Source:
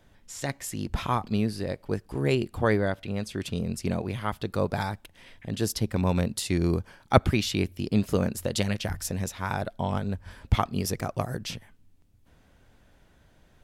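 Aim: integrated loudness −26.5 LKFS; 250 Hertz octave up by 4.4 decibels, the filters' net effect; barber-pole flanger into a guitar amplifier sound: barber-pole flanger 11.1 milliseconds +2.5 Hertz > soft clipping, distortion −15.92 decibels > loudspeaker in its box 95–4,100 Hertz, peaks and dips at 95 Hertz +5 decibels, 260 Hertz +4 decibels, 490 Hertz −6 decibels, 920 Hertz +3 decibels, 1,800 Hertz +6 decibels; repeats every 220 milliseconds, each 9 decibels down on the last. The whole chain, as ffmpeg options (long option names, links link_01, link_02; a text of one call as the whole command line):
ffmpeg -i in.wav -filter_complex "[0:a]equalizer=frequency=250:width_type=o:gain=4,aecho=1:1:220|440|660|880:0.355|0.124|0.0435|0.0152,asplit=2[link_01][link_02];[link_02]adelay=11.1,afreqshift=2.5[link_03];[link_01][link_03]amix=inputs=2:normalize=1,asoftclip=threshold=-18dB,highpass=95,equalizer=frequency=95:width_type=q:width=4:gain=5,equalizer=frequency=260:width_type=q:width=4:gain=4,equalizer=frequency=490:width_type=q:width=4:gain=-6,equalizer=frequency=920:width_type=q:width=4:gain=3,equalizer=frequency=1800:width_type=q:width=4:gain=6,lowpass=frequency=4100:width=0.5412,lowpass=frequency=4100:width=1.3066,volume=4dB" out.wav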